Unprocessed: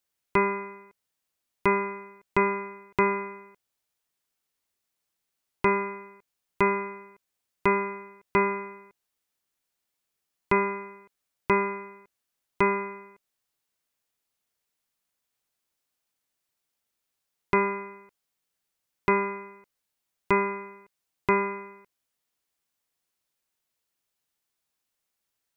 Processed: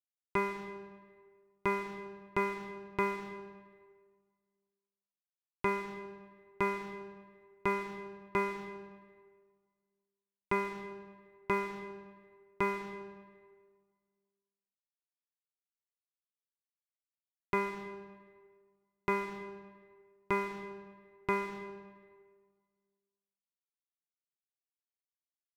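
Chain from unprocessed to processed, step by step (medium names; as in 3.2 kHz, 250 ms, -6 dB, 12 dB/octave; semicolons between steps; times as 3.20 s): crossover distortion -40.5 dBFS; algorithmic reverb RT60 1.7 s, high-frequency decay 0.65×, pre-delay 115 ms, DRR 11 dB; trim -8 dB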